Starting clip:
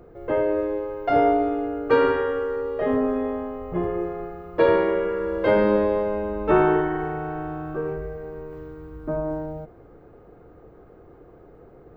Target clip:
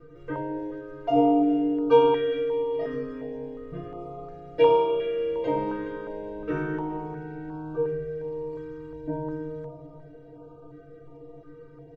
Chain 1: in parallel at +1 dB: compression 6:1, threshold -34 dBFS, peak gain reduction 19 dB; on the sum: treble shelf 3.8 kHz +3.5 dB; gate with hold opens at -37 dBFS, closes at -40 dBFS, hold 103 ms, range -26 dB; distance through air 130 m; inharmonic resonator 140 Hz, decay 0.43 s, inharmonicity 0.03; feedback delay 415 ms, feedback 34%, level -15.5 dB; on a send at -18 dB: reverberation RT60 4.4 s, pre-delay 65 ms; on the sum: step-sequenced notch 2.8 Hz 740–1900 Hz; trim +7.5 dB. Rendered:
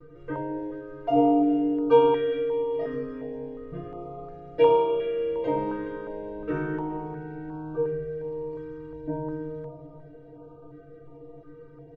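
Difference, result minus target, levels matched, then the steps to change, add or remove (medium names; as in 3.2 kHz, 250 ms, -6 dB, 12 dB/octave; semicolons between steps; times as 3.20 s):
4 kHz band -3.0 dB
change: treble shelf 3.8 kHz +11 dB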